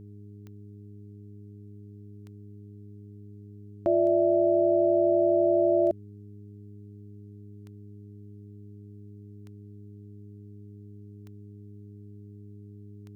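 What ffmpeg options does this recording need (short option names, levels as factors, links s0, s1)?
-af "adeclick=t=4,bandreject=f=102.6:t=h:w=4,bandreject=f=205.2:t=h:w=4,bandreject=f=307.8:t=h:w=4,bandreject=f=410.4:t=h:w=4"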